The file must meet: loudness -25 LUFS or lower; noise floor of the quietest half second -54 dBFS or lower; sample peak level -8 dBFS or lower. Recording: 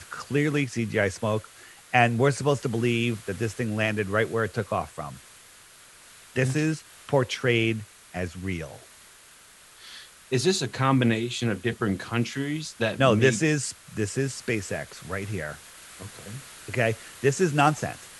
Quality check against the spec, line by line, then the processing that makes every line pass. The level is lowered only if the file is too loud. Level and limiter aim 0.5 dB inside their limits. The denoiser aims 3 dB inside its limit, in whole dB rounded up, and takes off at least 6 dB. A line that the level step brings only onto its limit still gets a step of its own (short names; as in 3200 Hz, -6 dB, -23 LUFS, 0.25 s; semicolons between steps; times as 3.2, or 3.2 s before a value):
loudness -26.0 LUFS: OK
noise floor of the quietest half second -52 dBFS: fail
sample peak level -5.0 dBFS: fail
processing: denoiser 6 dB, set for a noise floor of -52 dBFS; limiter -8.5 dBFS